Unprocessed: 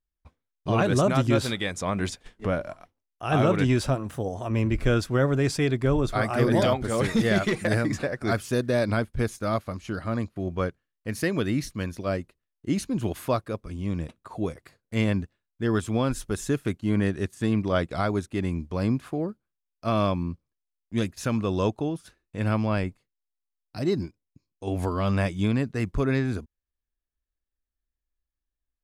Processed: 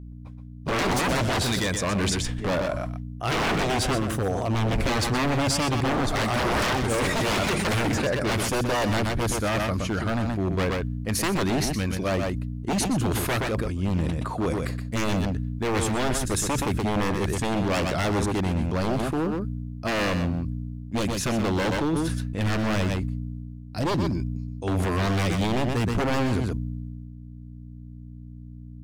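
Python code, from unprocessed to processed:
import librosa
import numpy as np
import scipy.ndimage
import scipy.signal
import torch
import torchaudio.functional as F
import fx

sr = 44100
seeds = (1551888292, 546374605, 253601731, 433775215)

p1 = 10.0 ** (-24.0 / 20.0) * (np.abs((x / 10.0 ** (-24.0 / 20.0) + 3.0) % 4.0 - 2.0) - 1.0)
p2 = fx.add_hum(p1, sr, base_hz=60, snr_db=13)
p3 = p2 + fx.echo_single(p2, sr, ms=124, db=-9.0, dry=0)
p4 = fx.sustainer(p3, sr, db_per_s=23.0)
y = p4 * 10.0 ** (4.5 / 20.0)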